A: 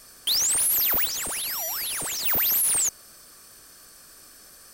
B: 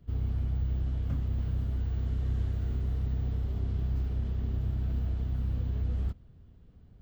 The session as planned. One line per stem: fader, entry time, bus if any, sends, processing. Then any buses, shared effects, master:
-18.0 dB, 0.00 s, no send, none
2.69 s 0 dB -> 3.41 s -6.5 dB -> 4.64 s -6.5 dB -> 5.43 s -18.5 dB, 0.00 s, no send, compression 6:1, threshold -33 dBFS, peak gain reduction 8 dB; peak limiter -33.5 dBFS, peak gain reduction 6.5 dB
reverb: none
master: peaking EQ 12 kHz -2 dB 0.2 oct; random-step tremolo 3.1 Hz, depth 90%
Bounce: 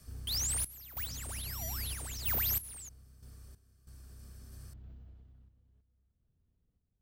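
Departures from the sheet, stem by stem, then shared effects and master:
stem A -18.0 dB -> -9.5 dB; master: missing peaking EQ 12 kHz -2 dB 0.2 oct

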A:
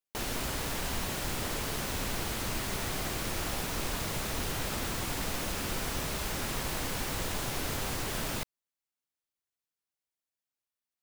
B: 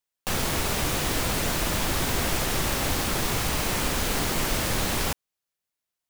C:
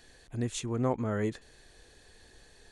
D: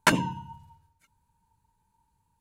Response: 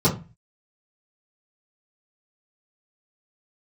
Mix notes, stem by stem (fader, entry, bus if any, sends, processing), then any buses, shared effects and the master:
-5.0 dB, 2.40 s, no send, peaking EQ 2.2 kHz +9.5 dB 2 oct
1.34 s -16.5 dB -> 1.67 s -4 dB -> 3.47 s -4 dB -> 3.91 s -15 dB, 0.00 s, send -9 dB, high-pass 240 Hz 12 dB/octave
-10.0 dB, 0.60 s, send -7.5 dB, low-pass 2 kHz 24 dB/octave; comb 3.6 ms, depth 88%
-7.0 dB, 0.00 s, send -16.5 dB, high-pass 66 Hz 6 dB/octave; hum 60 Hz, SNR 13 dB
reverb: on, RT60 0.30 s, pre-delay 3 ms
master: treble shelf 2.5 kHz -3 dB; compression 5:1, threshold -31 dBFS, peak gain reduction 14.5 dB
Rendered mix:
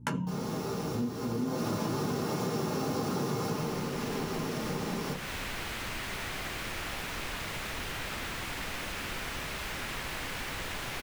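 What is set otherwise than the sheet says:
stem A: entry 2.40 s -> 3.40 s; stem B: send -9 dB -> -3 dB

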